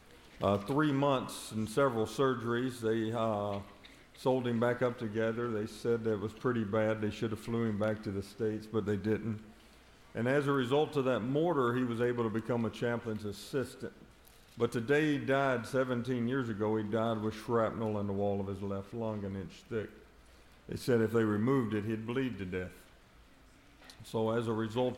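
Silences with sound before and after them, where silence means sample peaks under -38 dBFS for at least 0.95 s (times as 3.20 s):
22.67–23.90 s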